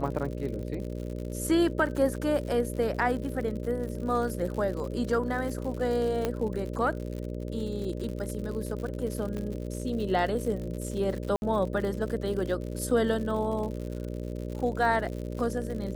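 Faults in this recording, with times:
buzz 60 Hz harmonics 10 -35 dBFS
crackle 93 per s -35 dBFS
6.25 s: pop -14 dBFS
9.37 s: pop -24 dBFS
11.36–11.42 s: dropout 61 ms

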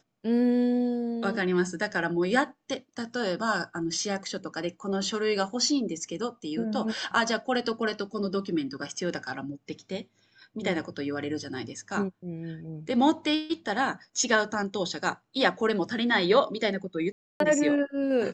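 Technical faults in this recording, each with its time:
17.12–17.40 s: dropout 282 ms

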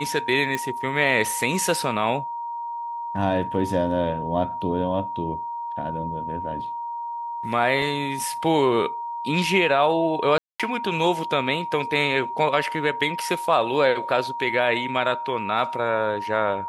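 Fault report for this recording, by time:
whine 940 Hz -28 dBFS
0.55 s: pop
7.82 s: dropout 2.4 ms
10.38–10.60 s: dropout 216 ms

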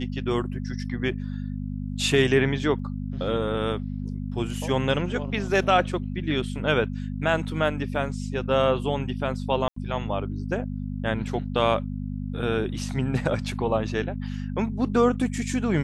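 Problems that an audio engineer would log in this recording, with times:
hum 50 Hz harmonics 5 -31 dBFS
2.79 s: dropout 3.3 ms
9.68–9.76 s: dropout 84 ms

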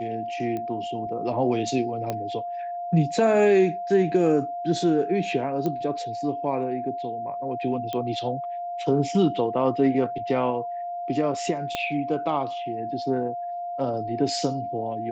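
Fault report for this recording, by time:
whine 700 Hz -29 dBFS
0.57 s: pop -20 dBFS
2.10 s: pop -14 dBFS
5.66 s: pop -16 dBFS
7.93 s: pop -17 dBFS
11.75 s: pop -12 dBFS

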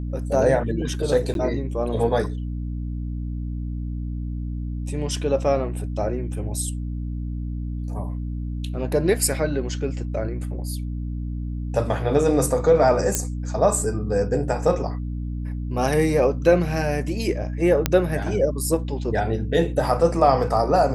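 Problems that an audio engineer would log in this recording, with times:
hum 60 Hz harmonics 5 -28 dBFS
1.34–1.35 s: dropout 12 ms
13.15 s: pop -4 dBFS
17.86 s: pop -3 dBFS

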